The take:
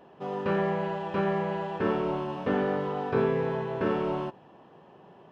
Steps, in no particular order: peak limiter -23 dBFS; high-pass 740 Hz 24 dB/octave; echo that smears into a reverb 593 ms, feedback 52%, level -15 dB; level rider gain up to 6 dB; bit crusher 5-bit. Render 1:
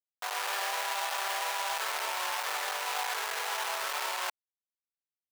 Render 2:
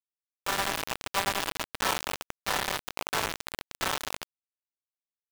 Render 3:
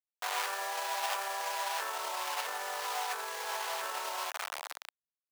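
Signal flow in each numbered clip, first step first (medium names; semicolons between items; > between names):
level rider > peak limiter > echo that smears into a reverb > bit crusher > high-pass; high-pass > peak limiter > echo that smears into a reverb > bit crusher > level rider; echo that smears into a reverb > level rider > bit crusher > peak limiter > high-pass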